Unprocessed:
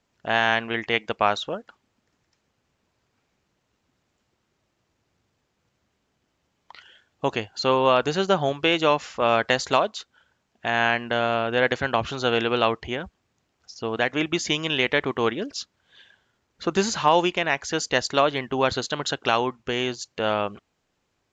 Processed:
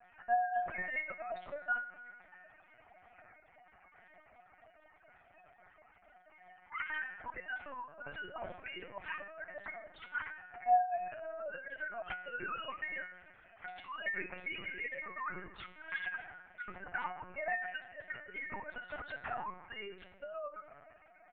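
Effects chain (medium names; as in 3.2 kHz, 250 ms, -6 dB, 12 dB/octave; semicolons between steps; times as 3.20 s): formants replaced by sine waves; 12.49–14.78 s: tilt EQ +3 dB/octave; comb 3.2 ms, depth 97%; inverted gate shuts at -23 dBFS, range -30 dB; compressor with a negative ratio -52 dBFS, ratio -0.5; high-order bell 1.1 kHz +13 dB 2.3 oct; feedback comb 360 Hz, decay 0.55 s, mix 90%; reverberation RT60 1.9 s, pre-delay 4 ms, DRR 10.5 dB; LPC vocoder at 8 kHz pitch kept; trim +16 dB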